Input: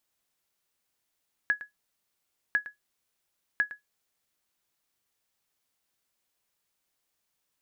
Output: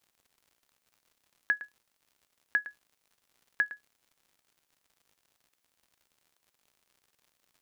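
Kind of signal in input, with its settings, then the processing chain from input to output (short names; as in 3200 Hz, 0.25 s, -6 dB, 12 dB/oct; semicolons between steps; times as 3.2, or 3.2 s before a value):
sonar ping 1680 Hz, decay 0.14 s, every 1.05 s, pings 3, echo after 0.11 s, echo -15.5 dB -16 dBFS
HPF 150 Hz; crackle 120/s -53 dBFS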